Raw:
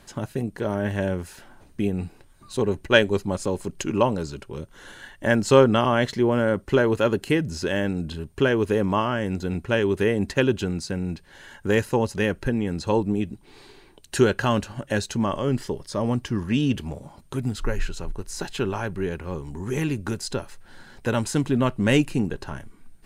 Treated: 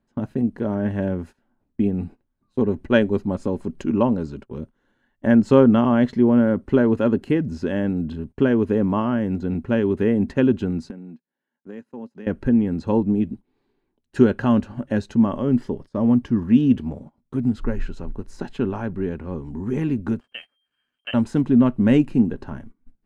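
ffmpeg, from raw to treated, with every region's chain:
-filter_complex "[0:a]asettb=1/sr,asplit=3[a][b][c];[a]atrim=end=10.904[d];[b]atrim=start=10.9:end=12.27,asetpts=PTS-STARTPTS,afade=t=in:d=0.004:c=qsin,afade=t=out:st=1.366:d=0.004:c=qsin,agate=range=-14dB:threshold=-43dB:ratio=16:release=100:detection=peak,highpass=f=160:w=0.5412,highpass=f=160:w=1.3066,acompressor=threshold=-37dB:ratio=4:attack=3.2:release=140:knee=1:detection=peak[e];[c]atrim=start=12.266[f];[d][e]acrossfade=d=0.004:c1=hsin:c2=qsin[g];[g][f]acrossfade=d=0.004:c1=qsin:c2=hsin,asettb=1/sr,asplit=3[h][i][j];[h]atrim=end=20.204[k];[i]atrim=start=20.2:end=21.14,asetpts=PTS-STARTPTS,afade=t=in:d=0.004:c=qsin,afade=t=out:st=0.936:d=0.004:c=qsin,lowpass=f=2.7k:t=q:w=0.5098,lowpass=f=2.7k:t=q:w=0.6013,lowpass=f=2.7k:t=q:w=0.9,lowpass=f=2.7k:t=q:w=2.563,afreqshift=-3200,aeval=exprs='sgn(val(0))*max(abs(val(0))-0.00282,0)':c=same[l];[j]atrim=start=21.136[m];[k][l]acrossfade=d=0.004:c1=hsin:c2=qsin[n];[n][m]acrossfade=d=0.004:c1=qsin:c2=hsin,lowpass=f=1.1k:p=1,agate=range=-21dB:threshold=-39dB:ratio=16:detection=peak,equalizer=f=240:w=3.1:g=10.5"

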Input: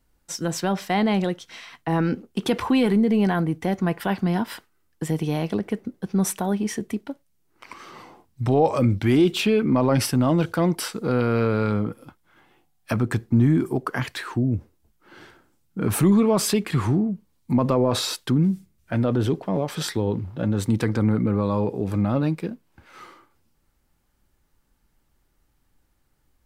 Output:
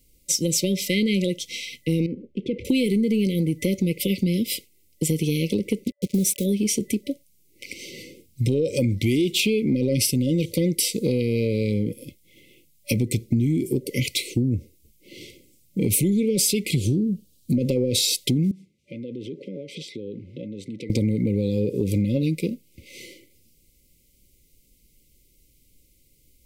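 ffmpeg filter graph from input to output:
-filter_complex "[0:a]asettb=1/sr,asplit=3[a][b][c];[a]atrim=end=2.064[d];[b]atrim=start=2.06:end=2.65,asetpts=PTS-STARTPTS,afade=t=in:d=0.004:c=qsin,afade=t=out:st=0.586:d=0.004:c=qsin,lowpass=1.4k,acompressor=threshold=-42dB:ratio=1.5:attack=3.2:release=140:knee=1:detection=peak[e];[c]atrim=start=2.646[f];[d][e]acrossfade=d=0.004:c1=hsin:c2=qsin[g];[g][f]acrossfade=d=0.004:c1=qsin:c2=hsin,asettb=1/sr,asplit=3[h][i][j];[h]atrim=end=5.844[k];[i]atrim=start=5.84:end=6.44,asetpts=PTS-STARTPTS,afade=t=in:d=0.004:c=qsin,afade=t=out:st=0.596:d=0.004:c=qsin,highshelf=f=5.5k:g=-3,acrusher=bits=6:mix=0:aa=0.5[l];[j]atrim=start=6.436[m];[k][l]acrossfade=d=0.004:c1=hsin:c2=qsin[n];[n][m]acrossfade=d=0.004:c1=qsin:c2=hsin,asettb=1/sr,asplit=3[o][p][q];[o]atrim=end=16.764[r];[p]atrim=start=16.76:end=17.57,asetpts=PTS-STARTPTS,afade=t=in:d=0.004:c=qsin,afade=t=out:st=0.806:d=0.004:c=qsin,asuperstop=centerf=1700:order=4:qfactor=0.8,equalizer=f=3.1k:w=1.1:g=3.5[s];[q]atrim=start=17.566[t];[r][s]acrossfade=d=0.004:c1=hsin:c2=qsin[u];[u][t]acrossfade=d=0.004:c1=qsin:c2=hsin,asettb=1/sr,asplit=3[v][w][x];[v]atrim=end=18.514[y];[w]atrim=start=18.51:end=20.9,asetpts=PTS-STARTPTS,afade=t=in:d=0.004:c=qsin,afade=t=out:st=2.386:d=0.004:c=qsin,aemphasis=mode=production:type=cd,acompressor=threshold=-34dB:ratio=6:attack=3.2:release=140:knee=1:detection=peak,highpass=190,lowpass=2.3k[z];[x]atrim=start=20.896[aa];[y][z]acrossfade=d=0.004:c1=hsin:c2=qsin[ab];[ab][aa]acrossfade=d=0.004:c1=qsin:c2=hsin,afftfilt=real='re*(1-between(b*sr/4096,580,2000))':imag='im*(1-between(b*sr/4096,580,2000))':win_size=4096:overlap=0.75,highshelf=f=3.9k:g=10,acompressor=threshold=-24dB:ratio=6,volume=5.5dB"

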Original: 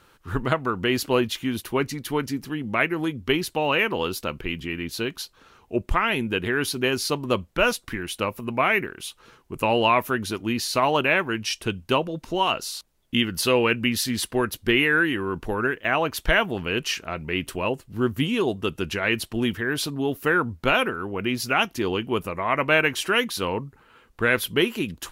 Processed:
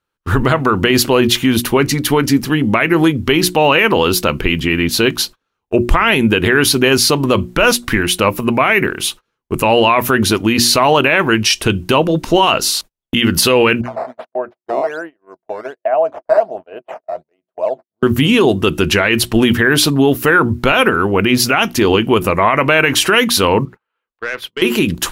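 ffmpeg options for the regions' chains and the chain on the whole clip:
-filter_complex "[0:a]asettb=1/sr,asplit=3[a][b][c];[a]atrim=end=13.814[d];[b]atrim=start=13.81:end=18.03,asetpts=PTS-STARTPTS,afade=t=in:d=0.004:c=qsin,afade=t=out:st=4.216:d=0.004:c=qsin,agate=range=-33dB:threshold=-40dB:ratio=3:release=100:detection=peak,acrusher=samples=8:mix=1:aa=0.000001:lfo=1:lforange=12.8:lforate=1.3,bandpass=f=650:t=q:w=8.1[e];[c]atrim=start=18.026[f];[d][e]acrossfade=d=0.004:c1=hsin:c2=qsin[g];[g][f]acrossfade=d=0.004:c1=qsin:c2=hsin,asettb=1/sr,asplit=3[h][i][j];[h]atrim=end=23.654[k];[i]atrim=start=23.65:end=24.62,asetpts=PTS-STARTPTS,afade=t=in:d=0.004:c=qsin,afade=t=out:st=0.966:d=0.004:c=qsin,acrossover=split=390 4700:gain=0.158 1 0.2[l][m][n];[l][m][n]amix=inputs=3:normalize=0,acompressor=threshold=-46dB:ratio=2:attack=3.2:release=140:knee=1:detection=peak,aeval=exprs='(tanh(25.1*val(0)+0.2)-tanh(0.2))/25.1':c=same[o];[j]atrim=start=24.616[p];[k][o]acrossfade=d=0.004:c1=hsin:c2=qsin[q];[q][p]acrossfade=d=0.004:c1=qsin:c2=hsin,bandreject=f=60:t=h:w=6,bandreject=f=120:t=h:w=6,bandreject=f=180:t=h:w=6,bandreject=f=240:t=h:w=6,bandreject=f=300:t=h:w=6,bandreject=f=360:t=h:w=6,agate=range=-38dB:threshold=-43dB:ratio=16:detection=peak,alimiter=level_in=17.5dB:limit=-1dB:release=50:level=0:latency=1,volume=-1dB"

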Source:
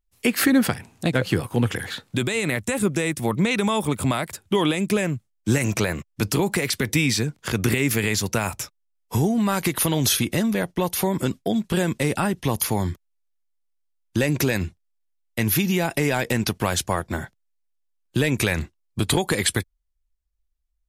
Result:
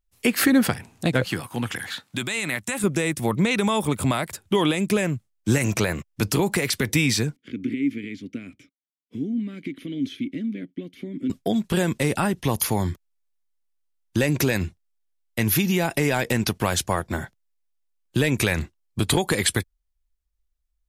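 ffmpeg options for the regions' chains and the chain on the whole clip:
-filter_complex "[0:a]asettb=1/sr,asplit=3[a][b][c];[a]atrim=end=1.244[d];[b]atrim=start=1.24:end=2.84,asetpts=PTS-STARTPTS,afade=t=in:d=0.004:c=qsin,afade=t=out:st=1.596:d=0.004:c=qsin,highpass=f=280:p=1,equalizer=f=450:w=1.8:g=-9[e];[c]atrim=start=2.836[f];[d][e]acrossfade=d=0.004:c1=hsin:c2=qsin[g];[g][f]acrossfade=d=0.004:c1=qsin:c2=hsin,asettb=1/sr,asplit=3[h][i][j];[h]atrim=end=7.364[k];[i]atrim=start=7.36:end=11.3,asetpts=PTS-STARTPTS,afade=t=in:d=0.004:c=qsin,afade=t=out:st=3.936:d=0.004:c=qsin,asplit=3[l][m][n];[l]bandpass=f=270:t=q:w=8,volume=0dB[o];[m]bandpass=f=2.29k:t=q:w=8,volume=-6dB[p];[n]bandpass=f=3.01k:t=q:w=8,volume=-9dB[q];[o][p][q]amix=inputs=3:normalize=0,tiltshelf=f=1.2k:g=5[r];[j]atrim=start=11.296[s];[k][r]acrossfade=d=0.004:c1=hsin:c2=qsin[t];[t][s]acrossfade=d=0.004:c1=qsin:c2=hsin"

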